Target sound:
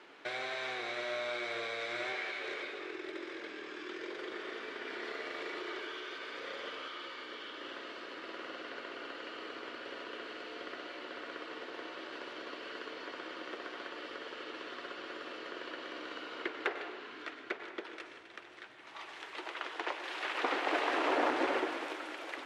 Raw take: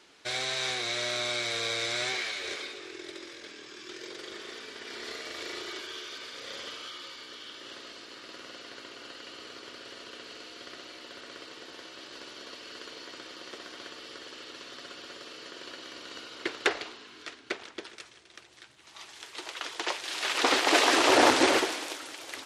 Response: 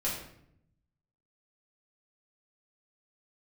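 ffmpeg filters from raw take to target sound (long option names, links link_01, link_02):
-filter_complex "[0:a]acompressor=threshold=-44dB:ratio=2,acrossover=split=240 2800:gain=0.224 1 0.112[link_01][link_02][link_03];[link_01][link_02][link_03]amix=inputs=3:normalize=0,asplit=2[link_04][link_05];[1:a]atrim=start_sample=2205,asetrate=25137,aresample=44100,adelay=97[link_06];[link_05][link_06]afir=irnorm=-1:irlink=0,volume=-18dB[link_07];[link_04][link_07]amix=inputs=2:normalize=0,volume=5dB"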